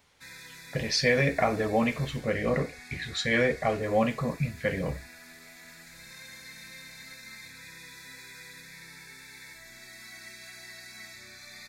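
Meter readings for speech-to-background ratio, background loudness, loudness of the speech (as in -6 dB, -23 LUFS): 17.5 dB, -45.5 LUFS, -28.0 LUFS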